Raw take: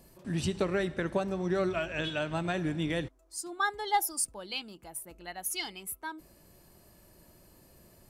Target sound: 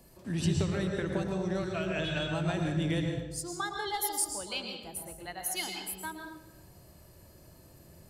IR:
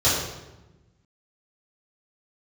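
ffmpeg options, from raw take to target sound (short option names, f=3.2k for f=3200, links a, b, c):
-filter_complex "[0:a]acrossover=split=170|3000[a][b][c];[b]acompressor=threshold=-33dB:ratio=6[d];[a][d][c]amix=inputs=3:normalize=0,asplit=2[e][f];[1:a]atrim=start_sample=2205,asetrate=48510,aresample=44100,adelay=107[g];[f][g]afir=irnorm=-1:irlink=0,volume=-19.5dB[h];[e][h]amix=inputs=2:normalize=0"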